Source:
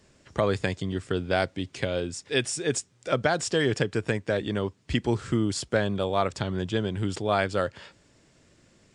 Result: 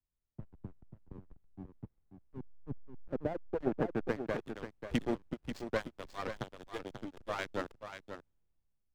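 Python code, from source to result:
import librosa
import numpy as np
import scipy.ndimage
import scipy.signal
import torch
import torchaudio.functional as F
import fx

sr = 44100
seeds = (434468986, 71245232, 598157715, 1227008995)

p1 = fx.hpss_only(x, sr, part='percussive')
p2 = fx.quant_companded(p1, sr, bits=6)
p3 = fx.peak_eq(p2, sr, hz=6100.0, db=-4.5, octaves=2.3)
p4 = fx.tube_stage(p3, sr, drive_db=20.0, bias=0.7)
p5 = fx.filter_sweep_lowpass(p4, sr, from_hz=220.0, to_hz=6000.0, start_s=2.7, end_s=4.87, q=1.0)
p6 = fx.dynamic_eq(p5, sr, hz=250.0, q=1.4, threshold_db=-46.0, ratio=4.0, max_db=3)
p7 = fx.backlash(p6, sr, play_db=-30.0)
p8 = fx.dmg_noise_colour(p7, sr, seeds[0], colour='brown', level_db=-72.0)
p9 = p8 + fx.echo_single(p8, sr, ms=538, db=-6.5, dry=0)
p10 = fx.band_widen(p9, sr, depth_pct=40)
y = p10 * 10.0 ** (-4.5 / 20.0)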